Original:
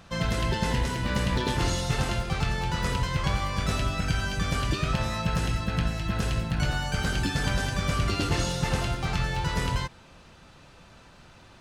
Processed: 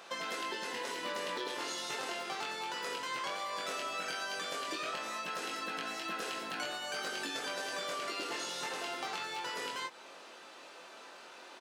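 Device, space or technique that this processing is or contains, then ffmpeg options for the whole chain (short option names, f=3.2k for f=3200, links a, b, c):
serial compression, peaks first: -filter_complex "[0:a]highpass=f=340:w=0.5412,highpass=f=340:w=1.3066,acompressor=threshold=-33dB:ratio=6,acompressor=threshold=-41dB:ratio=2,asplit=2[a][b];[b]adelay=22,volume=-4.5dB[c];[a][c]amix=inputs=2:normalize=0,volume=1.5dB"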